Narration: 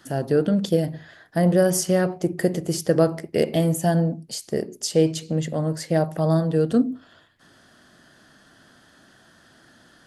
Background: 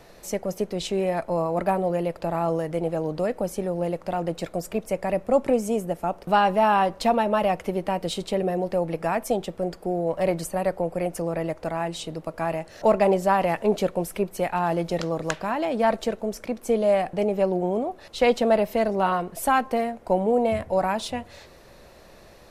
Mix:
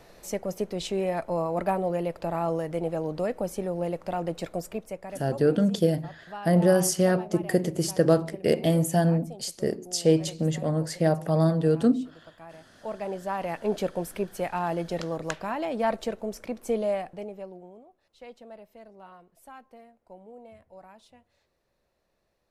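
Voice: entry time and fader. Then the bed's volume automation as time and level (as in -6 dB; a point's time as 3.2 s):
5.10 s, -2.0 dB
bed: 4.59 s -3 dB
5.41 s -19.5 dB
12.63 s -19.5 dB
13.76 s -4.5 dB
16.79 s -4.5 dB
17.84 s -26 dB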